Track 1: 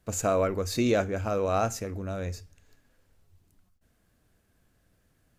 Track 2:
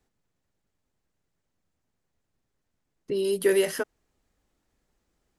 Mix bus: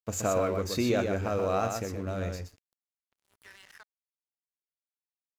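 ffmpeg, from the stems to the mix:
-filter_complex "[0:a]highpass=f=54:p=1,equalizer=f=8800:t=o:w=0.68:g=-7.5,acompressor=threshold=0.0224:ratio=1.5,volume=1.26,asplit=2[s0][s1];[s1]volume=0.531[s2];[1:a]afwtdn=0.0112,highpass=f=930:w=0.5412,highpass=f=930:w=1.3066,alimiter=level_in=2.51:limit=0.0631:level=0:latency=1:release=69,volume=0.398,volume=0.562[s3];[s2]aecho=0:1:124:1[s4];[s0][s3][s4]amix=inputs=3:normalize=0,equalizer=f=7600:w=5.1:g=3,aeval=exprs='sgn(val(0))*max(abs(val(0))-0.00335,0)':c=same"

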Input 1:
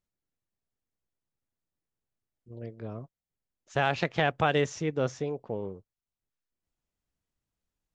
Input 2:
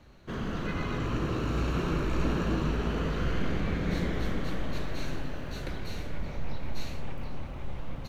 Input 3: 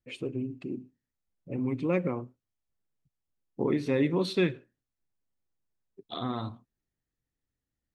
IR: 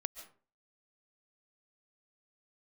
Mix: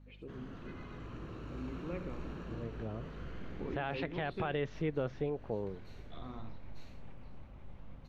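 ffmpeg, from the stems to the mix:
-filter_complex "[0:a]volume=0.708,asplit=2[s0][s1];[1:a]volume=0.168[s2];[2:a]volume=0.178,asplit=2[s3][s4];[s4]volume=0.251[s5];[s1]apad=whole_len=356455[s6];[s2][s6]sidechaincompress=threshold=0.0112:ratio=8:attack=21:release=179[s7];[s0][s3]amix=inputs=2:normalize=0,lowpass=f=3900:w=0.5412,lowpass=f=3900:w=1.3066,alimiter=limit=0.0668:level=0:latency=1:release=49,volume=1[s8];[s5]aecho=0:1:71:1[s9];[s7][s8][s9]amix=inputs=3:normalize=0,aeval=exprs='val(0)+0.00178*(sin(2*PI*50*n/s)+sin(2*PI*2*50*n/s)/2+sin(2*PI*3*50*n/s)/3+sin(2*PI*4*50*n/s)/4+sin(2*PI*5*50*n/s)/5)':c=same,highshelf=f=5400:g=-8.5"

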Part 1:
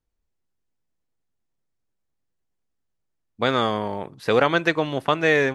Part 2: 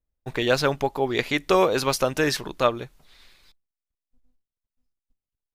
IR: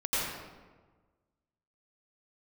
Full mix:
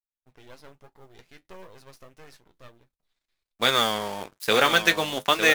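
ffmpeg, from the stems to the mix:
-filter_complex "[0:a]equalizer=f=90:w=2.9:g=-13.5,aeval=exprs='sgn(val(0))*max(abs(val(0))-0.00794,0)':c=same,crystalizer=i=8:c=0,adelay=200,volume=0.891,asplit=2[s0][s1];[s1]volume=0.398[s2];[1:a]aeval=exprs='max(val(0),0)':c=same,volume=0.112[s3];[s2]aecho=0:1:906:1[s4];[s0][s3][s4]amix=inputs=3:normalize=0,flanger=delay=9:depth=2.6:regen=-54:speed=1.1:shape=triangular,acrusher=bits=6:mode=log:mix=0:aa=0.000001"

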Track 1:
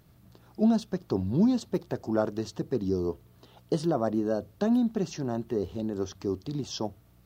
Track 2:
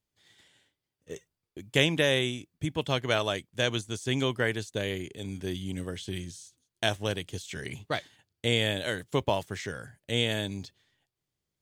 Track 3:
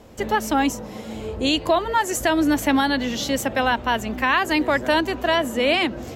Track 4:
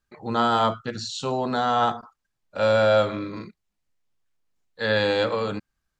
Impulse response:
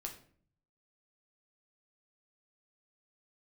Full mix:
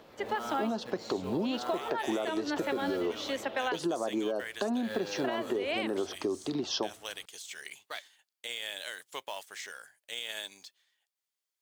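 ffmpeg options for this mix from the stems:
-filter_complex "[0:a]acontrast=86,volume=1.33[s0];[1:a]highpass=840,highshelf=f=5600:g=5.5,volume=0.631[s1];[2:a]volume=0.447,asplit=3[s2][s3][s4];[s2]atrim=end=3.79,asetpts=PTS-STARTPTS,afade=t=out:st=3.786:d=0.004:c=hsin[s5];[s3]atrim=start=3.79:end=5.24,asetpts=PTS-STARTPTS,volume=0[s6];[s4]atrim=start=5.24,asetpts=PTS-STARTPTS,afade=t=in:d=0.004:c=hsin[s7];[s5][s6][s7]concat=n=3:v=0:a=1[s8];[3:a]highpass=f=260:p=1,volume=0.2,asplit=2[s9][s10];[s10]apad=whole_len=512031[s11];[s1][s11]sidechaincompress=threshold=0.00562:ratio=5:attack=16:release=616[s12];[s0][s8]amix=inputs=2:normalize=0,acrossover=split=300 4900:gain=0.0891 1 0.178[s13][s14][s15];[s13][s14][s15]amix=inputs=3:normalize=0,alimiter=limit=0.141:level=0:latency=1:release=168,volume=1[s16];[s12][s9]amix=inputs=2:normalize=0,acrusher=bits=4:mode=log:mix=0:aa=0.000001,alimiter=level_in=1.19:limit=0.0631:level=0:latency=1:release=64,volume=0.841,volume=1[s17];[s16][s17]amix=inputs=2:normalize=0,acompressor=threshold=0.0398:ratio=6"

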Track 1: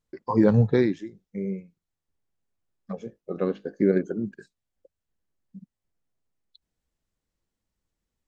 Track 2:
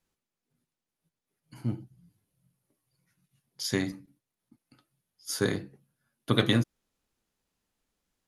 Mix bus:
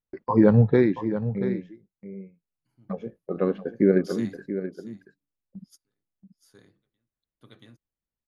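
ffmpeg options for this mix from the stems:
-filter_complex "[0:a]agate=range=0.224:threshold=0.00447:ratio=16:detection=peak,lowpass=2800,volume=1.26,asplit=3[s0][s1][s2];[s1]volume=0.282[s3];[1:a]adelay=450,volume=0.251,asplit=2[s4][s5];[s5]volume=0.158[s6];[s2]apad=whole_len=384713[s7];[s4][s7]sidechaingate=range=0.00501:threshold=0.00178:ratio=16:detection=peak[s8];[s3][s6]amix=inputs=2:normalize=0,aecho=0:1:681:1[s9];[s0][s8][s9]amix=inputs=3:normalize=0"

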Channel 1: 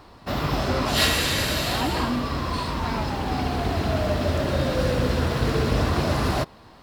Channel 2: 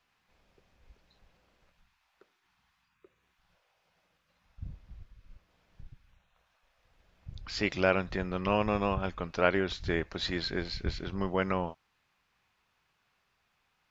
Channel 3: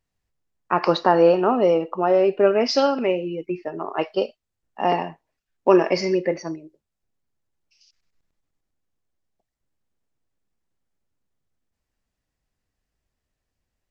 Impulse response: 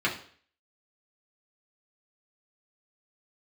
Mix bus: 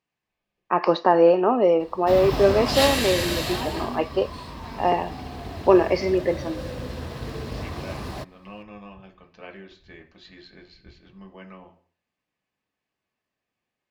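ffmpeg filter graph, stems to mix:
-filter_complex "[0:a]acrusher=bits=8:mode=log:mix=0:aa=0.000001,adelay=1800,volume=0.794,afade=t=out:st=3.38:d=0.67:silence=0.375837[s0];[1:a]volume=0.119,asplit=2[s1][s2];[s2]volume=0.355[s3];[2:a]highpass=190,lowpass=f=2800:p=1,volume=1[s4];[3:a]atrim=start_sample=2205[s5];[s3][s5]afir=irnorm=-1:irlink=0[s6];[s0][s1][s4][s6]amix=inputs=4:normalize=0,bandreject=f=1400:w=9.8"

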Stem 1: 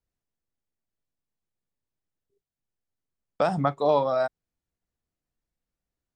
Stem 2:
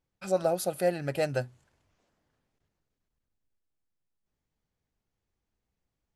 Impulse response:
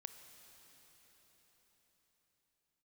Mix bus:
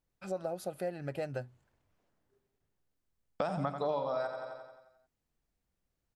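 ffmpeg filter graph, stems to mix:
-filter_complex "[0:a]volume=1.06,asplit=2[s0][s1];[s1]volume=0.316[s2];[1:a]highshelf=f=3400:g=-9,volume=0.631[s3];[s2]aecho=0:1:88|176|264|352|440|528|616|704|792:1|0.58|0.336|0.195|0.113|0.0656|0.0381|0.0221|0.0128[s4];[s0][s3][s4]amix=inputs=3:normalize=0,acompressor=threshold=0.02:ratio=3"

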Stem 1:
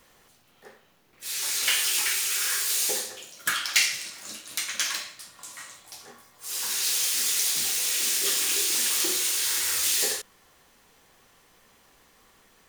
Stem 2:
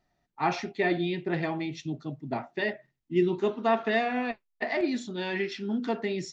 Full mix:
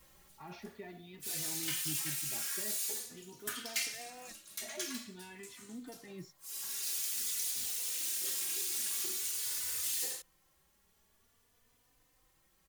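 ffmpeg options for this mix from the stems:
-filter_complex "[0:a]highshelf=f=7300:g=9.5,volume=0.562,afade=t=out:st=0.94:d=0.64:silence=0.375837[s0];[1:a]alimiter=limit=0.0668:level=0:latency=1,volume=0.2[s1];[s0][s1]amix=inputs=2:normalize=0,lowshelf=f=150:g=11.5,asplit=2[s2][s3];[s3]adelay=3.3,afreqshift=0.48[s4];[s2][s4]amix=inputs=2:normalize=1"

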